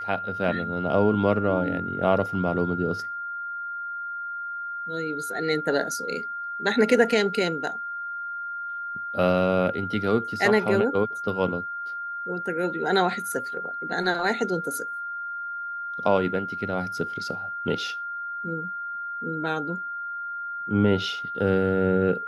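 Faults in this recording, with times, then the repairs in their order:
tone 1400 Hz -30 dBFS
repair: notch 1400 Hz, Q 30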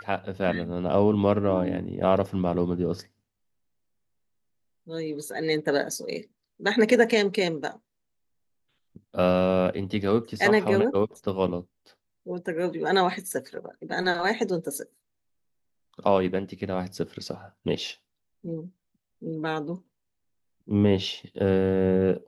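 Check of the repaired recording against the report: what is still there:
none

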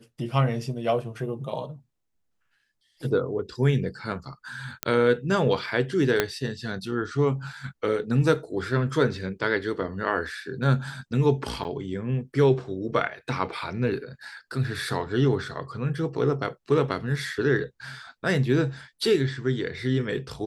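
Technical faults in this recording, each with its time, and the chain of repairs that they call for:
4.83 pop -7 dBFS
6.2 pop -6 dBFS
11.64–11.65 gap 8.7 ms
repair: de-click; interpolate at 11.64, 8.7 ms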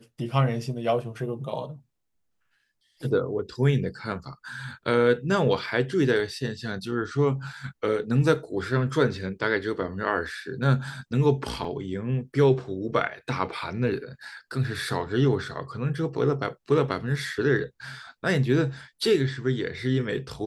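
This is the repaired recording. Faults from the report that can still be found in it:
6.2 pop

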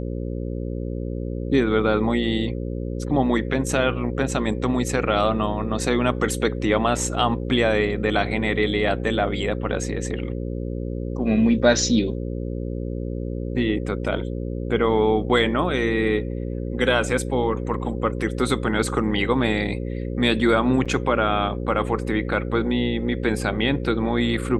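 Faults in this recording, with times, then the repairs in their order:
buzz 60 Hz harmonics 9 -28 dBFS
20.85–20.86 gap 6.5 ms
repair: de-hum 60 Hz, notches 9; interpolate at 20.85, 6.5 ms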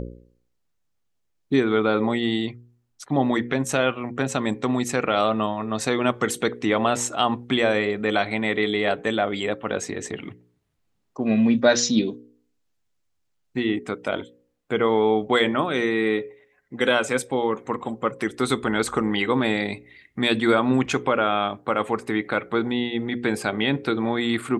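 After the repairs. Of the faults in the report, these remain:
none

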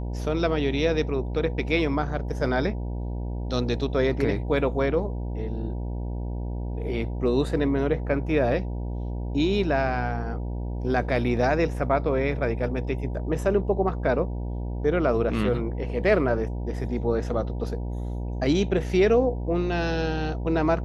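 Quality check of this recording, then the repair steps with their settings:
buzz 60 Hz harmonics 16 -30 dBFS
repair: de-hum 60 Hz, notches 16

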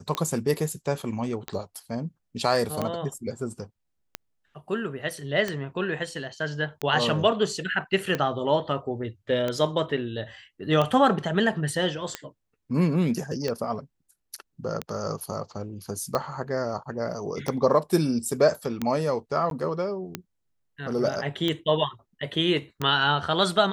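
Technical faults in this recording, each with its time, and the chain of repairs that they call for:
tick 45 rpm -13 dBFS
19.5–19.51 gap 12 ms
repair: de-click; interpolate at 19.5, 12 ms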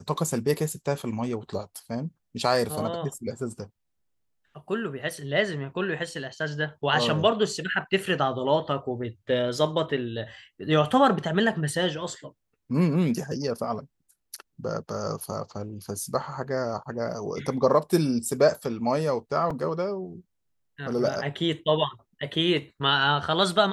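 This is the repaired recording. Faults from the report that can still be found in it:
none

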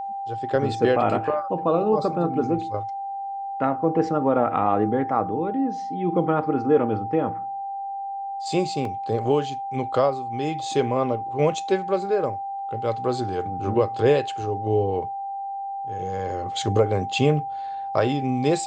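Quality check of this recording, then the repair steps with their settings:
tone 790 Hz -28 dBFS
8.85 gap 2.3 ms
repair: notch 790 Hz, Q 30; interpolate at 8.85, 2.3 ms

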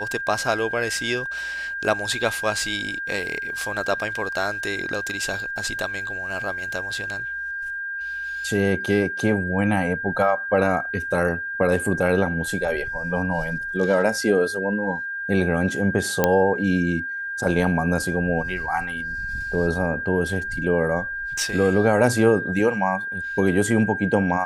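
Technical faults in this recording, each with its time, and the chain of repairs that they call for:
tone 1600 Hz -27 dBFS
16.24 pop -3 dBFS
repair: de-click; notch 1600 Hz, Q 30

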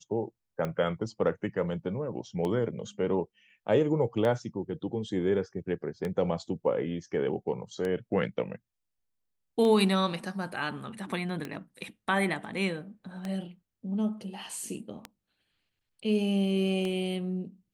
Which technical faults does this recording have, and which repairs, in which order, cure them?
tick 33 1/3 rpm -20 dBFS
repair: de-click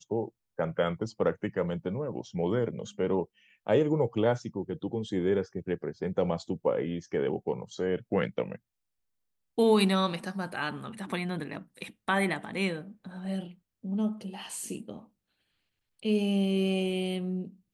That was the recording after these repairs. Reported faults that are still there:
none

